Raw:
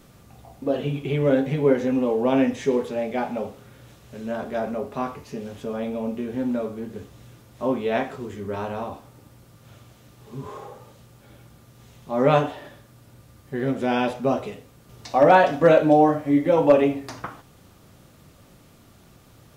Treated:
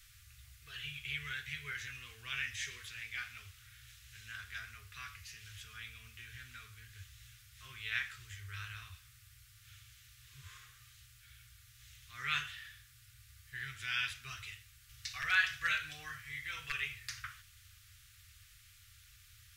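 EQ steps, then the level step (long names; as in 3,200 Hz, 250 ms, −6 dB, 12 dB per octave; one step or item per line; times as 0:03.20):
inverse Chebyshev band-stop filter 170–920 Hz, stop band 40 dB
low-shelf EQ 140 Hz −4.5 dB
−1.5 dB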